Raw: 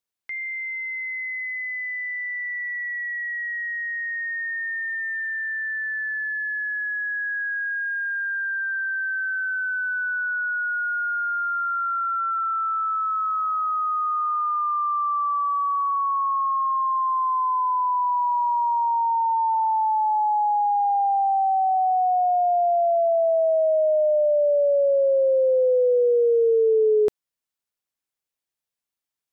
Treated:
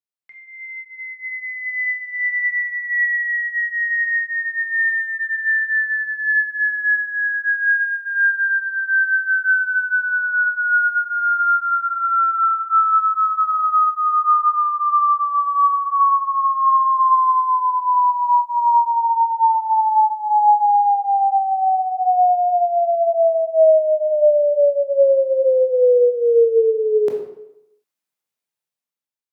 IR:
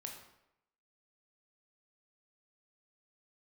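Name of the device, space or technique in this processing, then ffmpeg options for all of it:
far laptop microphone: -filter_complex "[0:a]asplit=3[link_01][link_02][link_03];[link_01]afade=type=out:start_time=2.21:duration=0.02[link_04];[link_02]asubboost=boost=10.5:cutoff=190,afade=type=in:start_time=2.21:duration=0.02,afade=type=out:start_time=2.73:duration=0.02[link_05];[link_03]afade=type=in:start_time=2.73:duration=0.02[link_06];[link_04][link_05][link_06]amix=inputs=3:normalize=0[link_07];[1:a]atrim=start_sample=2205[link_08];[link_07][link_08]afir=irnorm=-1:irlink=0,highpass=frequency=120:width=0.5412,highpass=frequency=120:width=1.3066,dynaudnorm=framelen=590:gausssize=5:maxgain=16dB,volume=-5dB"

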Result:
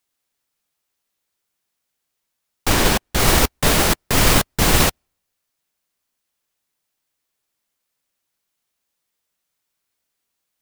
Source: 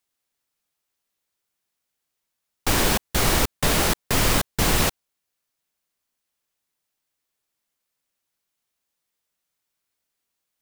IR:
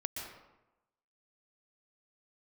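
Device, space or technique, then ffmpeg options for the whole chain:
keyed gated reverb: -filter_complex "[0:a]asettb=1/sr,asplit=3[link_01][link_02][link_03];[link_01]atrim=end=2.694[link_04];[link_02]atrim=start=2.69:end=3.2,asetpts=PTS-STARTPTS,afade=type=in:duration=0.004:curve=qsin,afade=type=out:start_time=0.506:duration=0.004:curve=qsin,highshelf=frequency=8000:gain=-4[link_05];[link_03]atrim=start=3.196[link_06];[link_04][link_05]acrossfade=duration=0.004:curve1=hsin:curve2=qsin[link_07];[link_07][link_06]acrossfade=duration=0.004:curve1=qsin:curve2=hsin,asplit=3[link_08][link_09][link_10];[1:a]atrim=start_sample=2205[link_11];[link_09][link_11]afir=irnorm=-1:irlink=0[link_12];[link_10]apad=whole_len=467980[link_13];[link_12][link_13]sidechaingate=range=-54dB:threshold=-17dB:ratio=16:detection=peak,volume=-1dB[link_14];[link_08][link_14]amix=inputs=2:normalize=0,volume=3dB"

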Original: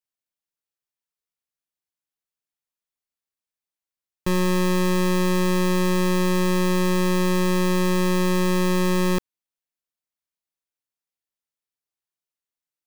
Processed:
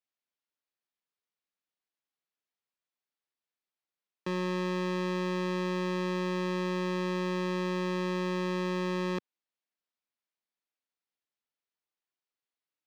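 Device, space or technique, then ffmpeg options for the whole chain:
DJ mixer with the lows and highs turned down: -filter_complex "[0:a]acrossover=split=150 5400:gain=0.0708 1 0.0708[link_01][link_02][link_03];[link_01][link_02][link_03]amix=inputs=3:normalize=0,alimiter=limit=-20.5dB:level=0:latency=1:release=24"

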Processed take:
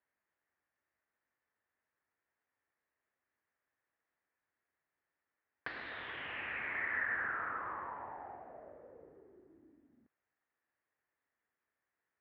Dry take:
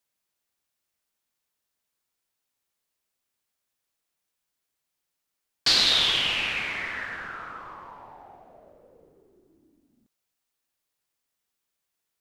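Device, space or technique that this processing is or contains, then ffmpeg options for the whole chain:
bass amplifier: -af "acompressor=threshold=-36dB:ratio=5,highpass=69,equalizer=frequency=130:width_type=q:width=4:gain=-4,equalizer=frequency=190:width_type=q:width=4:gain=-7,equalizer=frequency=1800:width_type=q:width=4:gain=8,lowpass=frequency=2000:width=0.5412,lowpass=frequency=2000:width=1.3066"

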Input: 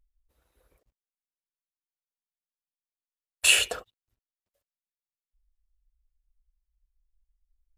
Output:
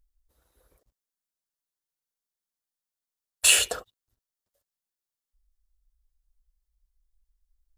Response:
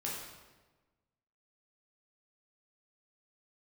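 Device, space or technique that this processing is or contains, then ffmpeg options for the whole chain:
exciter from parts: -filter_complex "[0:a]asplit=2[link_01][link_02];[link_02]highpass=frequency=2300:width=0.5412,highpass=frequency=2300:width=1.3066,asoftclip=type=tanh:threshold=-14dB,volume=-4.5dB[link_03];[link_01][link_03]amix=inputs=2:normalize=0,volume=1.5dB"

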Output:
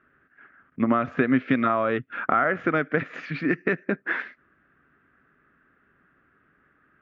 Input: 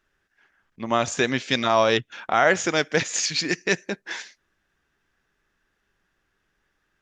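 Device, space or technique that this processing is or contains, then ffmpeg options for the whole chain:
bass amplifier: -af "acompressor=threshold=-30dB:ratio=5,highpass=75,equalizer=frequency=150:width_type=q:width=4:gain=4,equalizer=frequency=260:width_type=q:width=4:gain=9,equalizer=frequency=880:width_type=q:width=4:gain=-9,equalizer=frequency=1300:width_type=q:width=4:gain=8,lowpass=frequency=2100:width=0.5412,lowpass=frequency=2100:width=1.3066,volume=8.5dB"

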